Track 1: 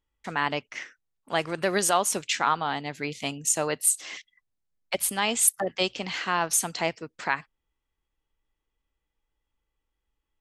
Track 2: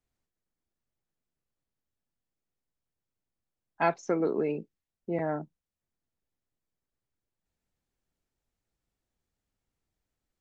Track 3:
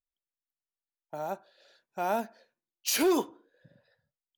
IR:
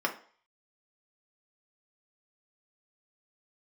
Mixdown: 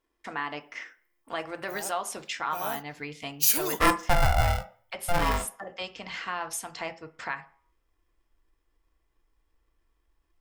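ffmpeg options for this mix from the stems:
-filter_complex "[0:a]acompressor=threshold=-43dB:ratio=1.5,volume=-5dB,asplit=2[a][b];[b]volume=-6.5dB[c];[1:a]aeval=exprs='val(0)*sgn(sin(2*PI*350*n/s))':c=same,volume=-2dB,asplit=3[d][e][f];[e]volume=-6dB[g];[2:a]aemphasis=mode=production:type=75fm,adelay=550,volume=-6dB[h];[f]apad=whole_len=458836[i];[a][i]sidechaincompress=threshold=-35dB:ratio=8:attack=16:release=1100[j];[3:a]atrim=start_sample=2205[k];[c][g]amix=inputs=2:normalize=0[l];[l][k]afir=irnorm=-1:irlink=0[m];[j][d][h][m]amix=inputs=4:normalize=0,asubboost=boost=6:cutoff=110"

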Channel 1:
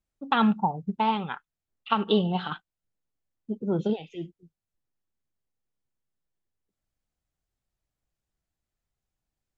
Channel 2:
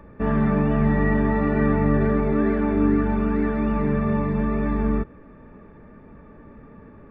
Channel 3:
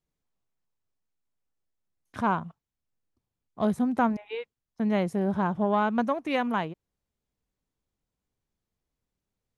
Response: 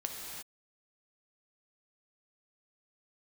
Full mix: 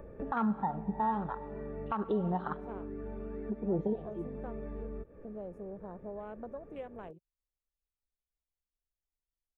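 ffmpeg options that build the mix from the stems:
-filter_complex "[0:a]highshelf=f=1.6k:t=q:w=1.5:g=-6.5,afwtdn=0.0282,asubboost=boost=5:cutoff=62,volume=-4dB,asplit=3[a][b][c];[b]volume=-17dB[d];[1:a]acompressor=threshold=-25dB:ratio=6,volume=1.5dB[e];[2:a]afwtdn=0.0224,adelay=450,volume=-6.5dB[f];[c]apad=whole_len=313442[g];[e][g]sidechaincompress=threshold=-39dB:ratio=10:attack=6.5:release=501[h];[h][f]amix=inputs=2:normalize=0,equalizer=f=125:t=o:w=1:g=-4,equalizer=f=250:t=o:w=1:g=-7,equalizer=f=500:t=o:w=1:g=8,equalizer=f=1k:t=o:w=1:g=-9,equalizer=f=2k:t=o:w=1:g=-6,equalizer=f=4k:t=o:w=1:g=-7,acompressor=threshold=-48dB:ratio=2,volume=0dB[i];[3:a]atrim=start_sample=2205[j];[d][j]afir=irnorm=-1:irlink=0[k];[a][i][k]amix=inputs=3:normalize=0,alimiter=limit=-22.5dB:level=0:latency=1:release=115"

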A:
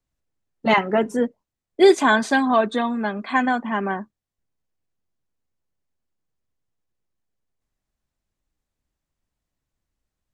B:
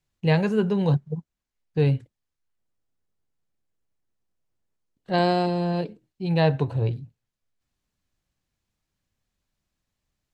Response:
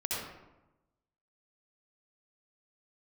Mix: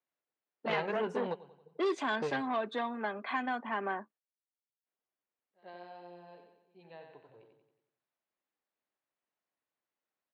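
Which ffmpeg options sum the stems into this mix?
-filter_complex "[0:a]acrossover=split=340|3000[a][b][c];[b]acompressor=threshold=-26dB:ratio=6[d];[a][d][c]amix=inputs=3:normalize=0,volume=-3.5dB,asplit=3[e][f][g];[e]atrim=end=4.18,asetpts=PTS-STARTPTS,afade=t=out:st=4.176:d=0.004:c=hsin[h];[f]atrim=start=4.18:end=4.86,asetpts=PTS-STARTPTS,volume=0[i];[g]atrim=start=4.86,asetpts=PTS-STARTPTS,afade=t=in:d=0.004:c=hsin[j];[h][i][j]concat=n=3:v=0:a=1,asplit=2[k][l];[1:a]acompressor=threshold=-26dB:ratio=4,adelay=450,volume=2.5dB,asplit=2[m][n];[n]volume=-22dB[o];[l]apad=whole_len=475764[p];[m][p]sidechaingate=range=-43dB:threshold=-34dB:ratio=16:detection=peak[q];[o]aecho=0:1:91|182|273|364|455|546|637:1|0.5|0.25|0.125|0.0625|0.0312|0.0156[r];[k][q][r]amix=inputs=3:normalize=0,asoftclip=type=tanh:threshold=-22dB,highpass=440,lowpass=2.9k"

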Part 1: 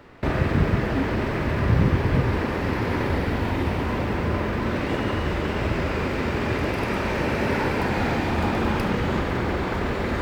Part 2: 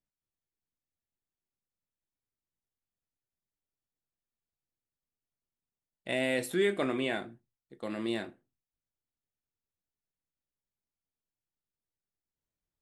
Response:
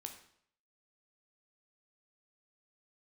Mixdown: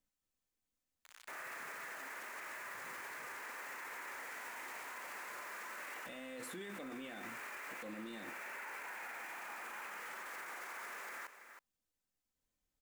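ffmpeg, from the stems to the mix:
-filter_complex "[0:a]lowpass=f=2.3k:w=0.5412,lowpass=f=2.3k:w=1.3066,acrusher=bits=6:mix=0:aa=0.000001,highpass=1.4k,adelay=1050,volume=-6.5dB,asplit=3[a][b][c];[b]volume=-17.5dB[d];[c]volume=-15.5dB[e];[1:a]aecho=1:1:3.9:0.46,alimiter=limit=-23dB:level=0:latency=1:release=300,volume=0dB,asplit=2[f][g];[g]volume=-7dB[h];[2:a]atrim=start_sample=2205[i];[d][h]amix=inputs=2:normalize=0[j];[j][i]afir=irnorm=-1:irlink=0[k];[e]aecho=0:1:321:1[l];[a][f][k][l]amix=inputs=4:normalize=0,equalizer=f=7.1k:t=o:w=0.43:g=3.5,alimiter=level_in=14.5dB:limit=-24dB:level=0:latency=1:release=35,volume=-14.5dB"

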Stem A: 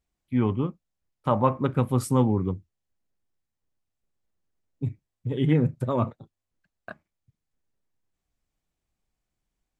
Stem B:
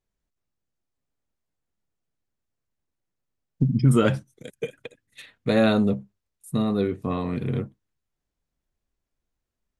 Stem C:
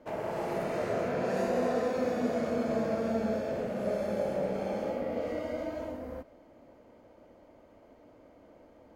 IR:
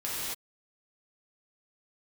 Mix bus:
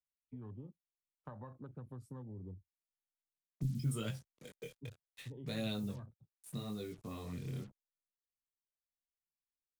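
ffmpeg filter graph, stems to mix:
-filter_complex "[0:a]acrossover=split=120|3000[a][b][c];[b]acompressor=threshold=-27dB:ratio=1.5[d];[a][d][c]amix=inputs=3:normalize=0,afwtdn=0.0251,acompressor=threshold=-26dB:ratio=6,volume=-14dB[e];[1:a]flanger=delay=17.5:depth=7.2:speed=0.72,equalizer=f=100:w=6.6:g=-7,acrusher=bits=7:mix=0:aa=0.5,volume=-6dB[f];[e][f]amix=inputs=2:normalize=0,acrossover=split=120|3000[g][h][i];[h]acompressor=threshold=-53dB:ratio=2[j];[g][j][i]amix=inputs=3:normalize=0"

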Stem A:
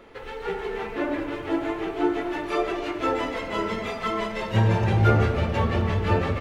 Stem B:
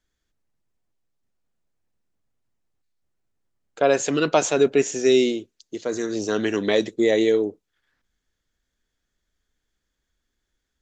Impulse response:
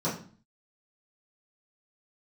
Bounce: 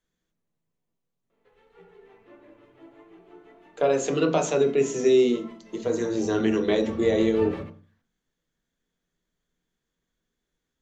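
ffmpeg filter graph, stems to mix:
-filter_complex "[0:a]flanger=delay=4.4:depth=4.2:regen=66:speed=0.43:shape=sinusoidal,adelay=1300,volume=-7dB,afade=t=in:st=6.68:d=0.45:silence=0.354813,asplit=2[a][b];[b]volume=-19.5dB[c];[1:a]acompressor=threshold=-20dB:ratio=2,volume=-4dB,asplit=3[d][e][f];[e]volume=-11.5dB[g];[f]apad=whole_len=339634[h];[a][h]sidechaingate=range=-6dB:threshold=-48dB:ratio=16:detection=peak[i];[2:a]atrim=start_sample=2205[j];[c][g]amix=inputs=2:normalize=0[k];[k][j]afir=irnorm=-1:irlink=0[l];[i][d][l]amix=inputs=3:normalize=0"

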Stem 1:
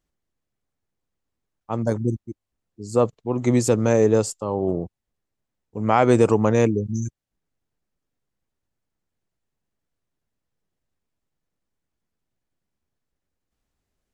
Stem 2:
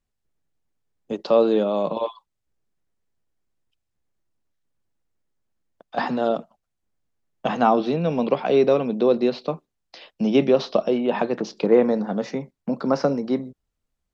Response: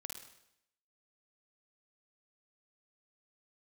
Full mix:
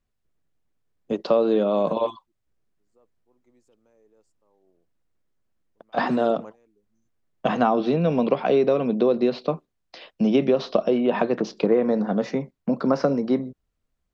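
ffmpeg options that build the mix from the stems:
-filter_complex "[0:a]highpass=270,alimiter=limit=-12dB:level=0:latency=1,volume=-17dB[a];[1:a]bandreject=f=850:w=13,volume=2.5dB,asplit=2[b][c];[c]apad=whole_len=623359[d];[a][d]sidechaingate=range=-23dB:threshold=-36dB:ratio=16:detection=peak[e];[e][b]amix=inputs=2:normalize=0,highshelf=f=4.1k:g=-6.5,acompressor=threshold=-15dB:ratio=6"

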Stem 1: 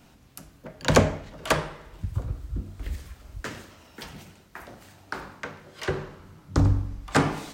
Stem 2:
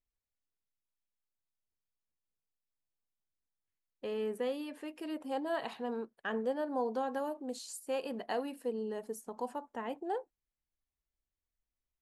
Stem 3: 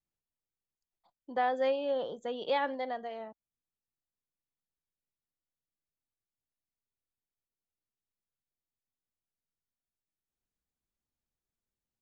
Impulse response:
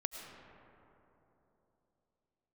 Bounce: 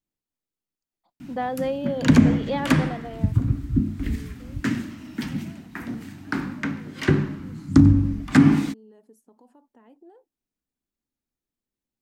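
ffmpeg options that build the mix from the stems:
-filter_complex "[0:a]equalizer=f=125:t=o:w=1:g=9,equalizer=f=250:t=o:w=1:g=11,equalizer=f=500:t=o:w=1:g=-11,equalizer=f=2k:t=o:w=1:g=6,alimiter=limit=-11.5dB:level=0:latency=1:release=147,adelay=1200,volume=1.5dB[a];[1:a]alimiter=level_in=10.5dB:limit=-24dB:level=0:latency=1:release=82,volume=-10.5dB,volume=-14dB[b];[2:a]volume=0dB[c];[a][b][c]amix=inputs=3:normalize=0,equalizer=f=270:t=o:w=1.1:g=10"

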